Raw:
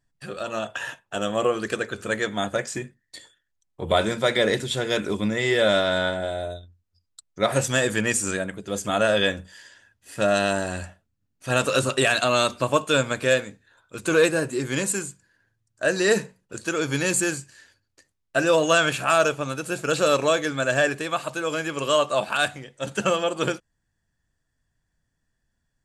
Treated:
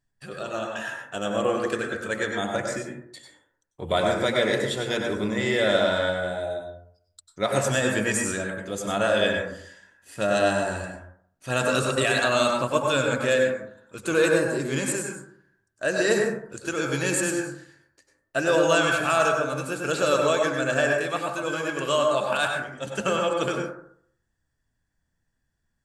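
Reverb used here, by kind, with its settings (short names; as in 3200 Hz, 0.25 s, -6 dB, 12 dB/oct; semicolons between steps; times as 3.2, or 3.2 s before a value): plate-style reverb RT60 0.63 s, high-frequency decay 0.3×, pre-delay 85 ms, DRR 1 dB; gain -3.5 dB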